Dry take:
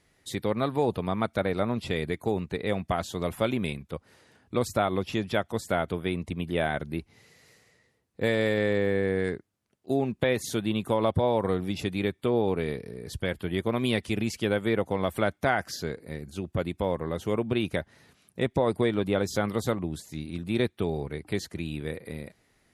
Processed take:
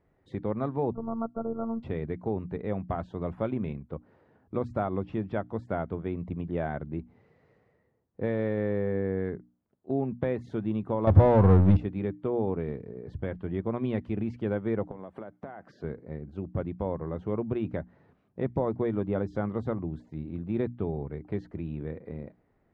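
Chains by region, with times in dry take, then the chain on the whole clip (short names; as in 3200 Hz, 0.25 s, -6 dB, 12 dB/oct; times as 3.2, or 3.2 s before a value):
0.94–1.83 robotiser 227 Hz + brick-wall FIR low-pass 1500 Hz
11.07–11.77 bell 68 Hz +14.5 dB 1.6 oct + power-law curve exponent 0.5
14.91–15.84 HPF 150 Hz + compressor 16:1, threshold -34 dBFS
whole clip: LPF 1000 Hz 12 dB/oct; notches 60/120/180/240/300 Hz; dynamic EQ 550 Hz, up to -4 dB, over -38 dBFS, Q 0.81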